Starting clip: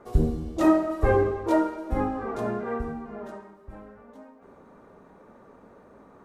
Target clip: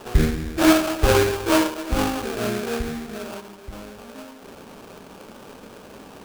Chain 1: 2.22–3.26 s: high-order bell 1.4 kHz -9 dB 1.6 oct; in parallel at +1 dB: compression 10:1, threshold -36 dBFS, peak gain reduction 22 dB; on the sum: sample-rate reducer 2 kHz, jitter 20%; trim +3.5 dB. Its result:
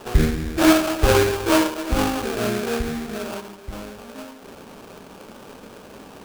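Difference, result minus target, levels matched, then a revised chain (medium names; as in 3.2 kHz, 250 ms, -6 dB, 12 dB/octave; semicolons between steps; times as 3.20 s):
compression: peak gain reduction -11 dB
2.22–3.26 s: high-order bell 1.4 kHz -9 dB 1.6 oct; in parallel at +1 dB: compression 10:1, threshold -48 dBFS, peak gain reduction 32.5 dB; on the sum: sample-rate reducer 2 kHz, jitter 20%; trim +3.5 dB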